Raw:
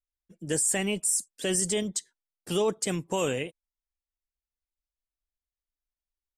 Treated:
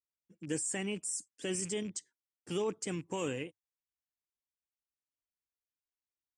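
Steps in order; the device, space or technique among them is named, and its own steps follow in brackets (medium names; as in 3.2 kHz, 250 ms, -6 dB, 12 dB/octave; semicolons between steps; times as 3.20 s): car door speaker with a rattle (rattle on loud lows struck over -36 dBFS, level -35 dBFS; cabinet simulation 84–8500 Hz, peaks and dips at 100 Hz +9 dB, 300 Hz +6 dB, 640 Hz -6 dB, 3.9 kHz -8 dB); trim -8 dB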